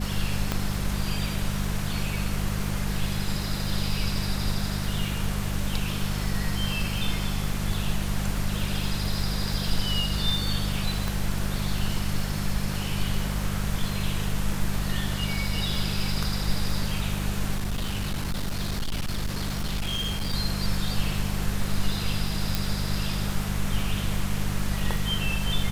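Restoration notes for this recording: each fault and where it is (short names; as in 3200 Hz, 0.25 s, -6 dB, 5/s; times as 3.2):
crackle 220/s -33 dBFS
hum 50 Hz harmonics 4 -30 dBFS
0.52 pop -10 dBFS
11.08 pop
17.55–20.34 clipped -24 dBFS
22.55 pop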